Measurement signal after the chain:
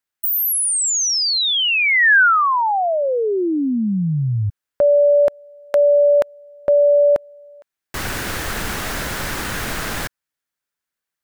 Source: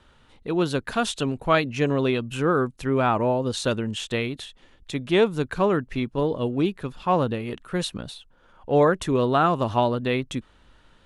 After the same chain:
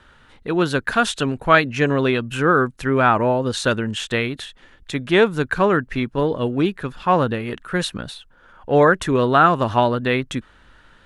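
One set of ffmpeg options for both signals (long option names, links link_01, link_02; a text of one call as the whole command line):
ffmpeg -i in.wav -af "equalizer=frequency=1600:width=1.9:gain=8,volume=3.5dB" out.wav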